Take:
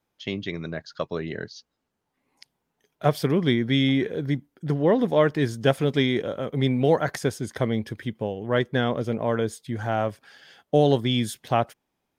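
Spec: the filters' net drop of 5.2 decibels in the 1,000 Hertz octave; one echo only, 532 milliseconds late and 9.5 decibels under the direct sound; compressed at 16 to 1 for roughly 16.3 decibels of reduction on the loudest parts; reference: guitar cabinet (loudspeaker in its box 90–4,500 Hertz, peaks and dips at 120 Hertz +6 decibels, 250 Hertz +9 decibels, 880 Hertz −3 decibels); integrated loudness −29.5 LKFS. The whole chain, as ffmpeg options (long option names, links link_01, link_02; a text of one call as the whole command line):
ffmpeg -i in.wav -af "equalizer=frequency=1000:width_type=o:gain=-6.5,acompressor=threshold=-32dB:ratio=16,highpass=90,equalizer=frequency=120:width_type=q:width=4:gain=6,equalizer=frequency=250:width_type=q:width=4:gain=9,equalizer=frequency=880:width_type=q:width=4:gain=-3,lowpass=frequency=4500:width=0.5412,lowpass=frequency=4500:width=1.3066,aecho=1:1:532:0.335,volume=5dB" out.wav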